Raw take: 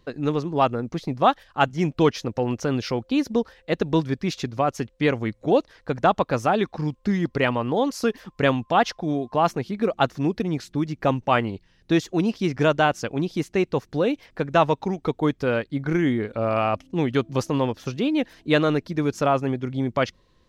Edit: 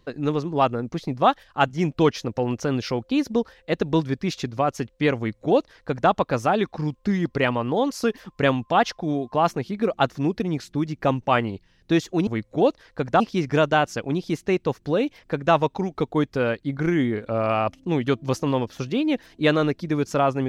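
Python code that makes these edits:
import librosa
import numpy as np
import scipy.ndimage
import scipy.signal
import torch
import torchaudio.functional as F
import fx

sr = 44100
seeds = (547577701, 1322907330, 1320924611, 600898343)

y = fx.edit(x, sr, fx.duplicate(start_s=5.17, length_s=0.93, to_s=12.27), tone=tone)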